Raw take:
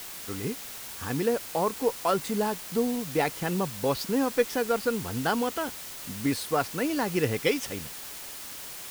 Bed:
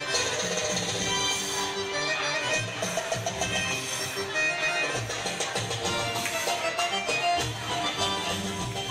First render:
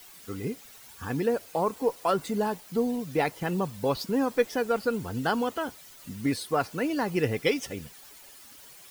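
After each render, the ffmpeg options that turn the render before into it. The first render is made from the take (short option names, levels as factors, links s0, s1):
-af "afftdn=nr=12:nf=-41"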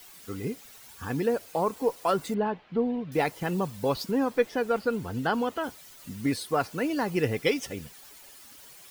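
-filter_complex "[0:a]asettb=1/sr,asplit=3[s0][s1][s2];[s0]atrim=end=2.344[s3];[s1]atrim=start=2.34:end=3.12,asetpts=PTS-STARTPTS,afade=t=in:d=0.004:c=qsin,afade=t=out:st=0.776:d=0.004:c=qsin,lowpass=f=3100:w=0.5412,lowpass=f=3100:w=1.3066[s4];[s2]atrim=start=3.116[s5];[s3][s4]acrossfade=d=0.004:c1=hsin:c2=qsin[s6];[s6][s5]acrossfade=d=0.004:c1=qsin:c2=hsin,asettb=1/sr,asplit=3[s7][s8][s9];[s7]atrim=end=4.114[s10];[s8]atrim=start=4.11:end=5.64,asetpts=PTS-STARTPTS,afade=t=in:d=0.004:c=qsin,afade=t=out:st=1.526:d=0.004:c=qsin,acrossover=split=4000[s11][s12];[s12]acompressor=threshold=0.00316:ratio=4:attack=1:release=60[s13];[s11][s13]amix=inputs=2:normalize=0[s14];[s9]atrim=start=5.636[s15];[s10][s14]acrossfade=d=0.004:c1=hsin:c2=qsin[s16];[s16][s15]acrossfade=d=0.004:c1=qsin:c2=hsin"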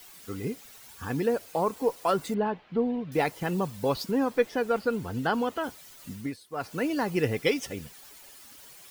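-filter_complex "[0:a]asplit=3[s0][s1][s2];[s0]atrim=end=6.37,asetpts=PTS-STARTPTS,afade=t=out:st=6.12:d=0.25:silence=0.149624[s3];[s1]atrim=start=6.37:end=6.5,asetpts=PTS-STARTPTS,volume=0.15[s4];[s2]atrim=start=6.5,asetpts=PTS-STARTPTS,afade=t=in:d=0.25:silence=0.149624[s5];[s3][s4][s5]concat=n=3:v=0:a=1"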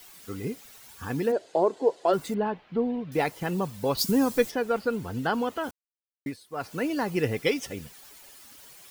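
-filter_complex "[0:a]asplit=3[s0][s1][s2];[s0]afade=t=out:st=1.31:d=0.02[s3];[s1]highpass=190,equalizer=f=220:t=q:w=4:g=-5,equalizer=f=370:t=q:w=4:g=10,equalizer=f=630:t=q:w=4:g=7,equalizer=f=1200:t=q:w=4:g=-8,equalizer=f=2400:t=q:w=4:g=-8,equalizer=f=5700:t=q:w=4:g=-8,lowpass=f=7000:w=0.5412,lowpass=f=7000:w=1.3066,afade=t=in:st=1.31:d=0.02,afade=t=out:st=2.12:d=0.02[s4];[s2]afade=t=in:st=2.12:d=0.02[s5];[s3][s4][s5]amix=inputs=3:normalize=0,asplit=3[s6][s7][s8];[s6]afade=t=out:st=3.97:d=0.02[s9];[s7]bass=f=250:g=9,treble=f=4000:g=14,afade=t=in:st=3.97:d=0.02,afade=t=out:st=4.5:d=0.02[s10];[s8]afade=t=in:st=4.5:d=0.02[s11];[s9][s10][s11]amix=inputs=3:normalize=0,asplit=3[s12][s13][s14];[s12]atrim=end=5.71,asetpts=PTS-STARTPTS,afade=t=out:st=5.706:d=0.004:c=hsin[s15];[s13]atrim=start=5.71:end=6.26,asetpts=PTS-STARTPTS,volume=0[s16];[s14]atrim=start=6.26,asetpts=PTS-STARTPTS,afade=t=in:d=0.004:c=hsin[s17];[s15][s16][s17]concat=n=3:v=0:a=1"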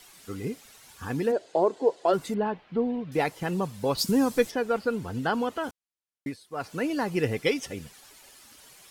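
-af "lowpass=12000"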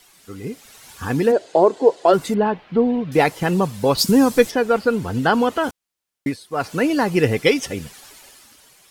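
-af "dynaudnorm=f=110:g=13:m=3.76"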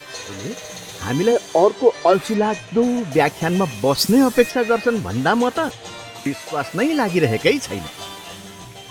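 -filter_complex "[1:a]volume=0.473[s0];[0:a][s0]amix=inputs=2:normalize=0"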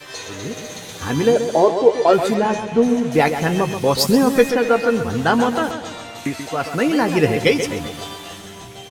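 -filter_complex "[0:a]asplit=2[s0][s1];[s1]adelay=13,volume=0.282[s2];[s0][s2]amix=inputs=2:normalize=0,asplit=2[s3][s4];[s4]adelay=132,lowpass=f=2900:p=1,volume=0.376,asplit=2[s5][s6];[s6]adelay=132,lowpass=f=2900:p=1,volume=0.52,asplit=2[s7][s8];[s8]adelay=132,lowpass=f=2900:p=1,volume=0.52,asplit=2[s9][s10];[s10]adelay=132,lowpass=f=2900:p=1,volume=0.52,asplit=2[s11][s12];[s12]adelay=132,lowpass=f=2900:p=1,volume=0.52,asplit=2[s13][s14];[s14]adelay=132,lowpass=f=2900:p=1,volume=0.52[s15];[s5][s7][s9][s11][s13][s15]amix=inputs=6:normalize=0[s16];[s3][s16]amix=inputs=2:normalize=0"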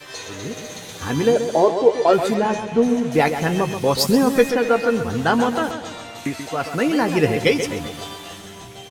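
-af "volume=0.841"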